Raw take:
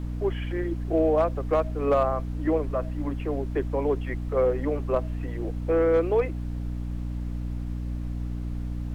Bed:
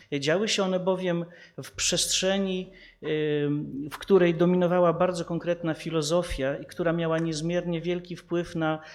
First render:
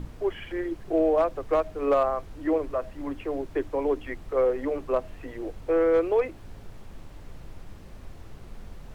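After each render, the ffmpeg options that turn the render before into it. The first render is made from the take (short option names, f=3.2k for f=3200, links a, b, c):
-af "bandreject=f=60:t=h:w=6,bandreject=f=120:t=h:w=6,bandreject=f=180:t=h:w=6,bandreject=f=240:t=h:w=6,bandreject=f=300:t=h:w=6"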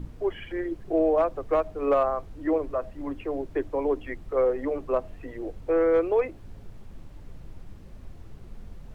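-af "afftdn=nr=6:nf=-45"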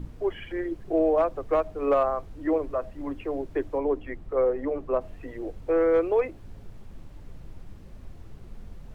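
-filter_complex "[0:a]asettb=1/sr,asplit=3[a][b][c];[a]atrim=end=3.784[d];[b]atrim=start=3.78:end=5.01,asetpts=PTS-STARTPTS,afade=t=in:d=0.004:c=qsin,afade=t=out:st=1.226:d=0.004:c=qsin,highshelf=f=2.7k:g=-8.5[e];[c]atrim=start=5.006[f];[d][e]acrossfade=d=0.004:c1=hsin:c2=qsin[g];[g][f]acrossfade=d=0.004:c1=qsin:c2=hsin"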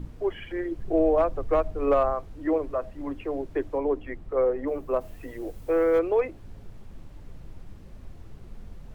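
-filter_complex "[0:a]asettb=1/sr,asplit=3[a][b][c];[a]atrim=end=0.774[d];[b]atrim=start=0.77:end=2.13,asetpts=PTS-STARTPTS,afade=t=in:d=0.004:c=qsin,afade=t=out:st=1.356:d=0.004:c=qsin,lowshelf=f=120:g=10[e];[c]atrim=start=2.126[f];[d][e]acrossfade=d=0.004:c1=hsin:c2=qsin[g];[g][f]acrossfade=d=0.004:c1=qsin:c2=hsin,asettb=1/sr,asplit=3[h][i][j];[h]atrim=end=4.674[k];[i]atrim=start=4.67:end=5.99,asetpts=PTS-STARTPTS,afade=t=in:d=0.004:c=qsin,afade=t=out:st=1.316:d=0.004:c=qsin,aemphasis=mode=production:type=50fm[l];[j]atrim=start=5.986[m];[k][l]acrossfade=d=0.004:c1=hsin:c2=qsin[n];[n][m]acrossfade=d=0.004:c1=qsin:c2=hsin"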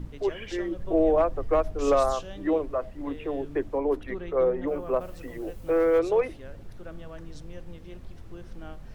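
-filter_complex "[1:a]volume=-18dB[a];[0:a][a]amix=inputs=2:normalize=0"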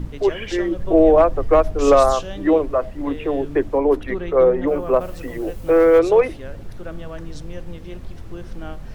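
-af "volume=9dB"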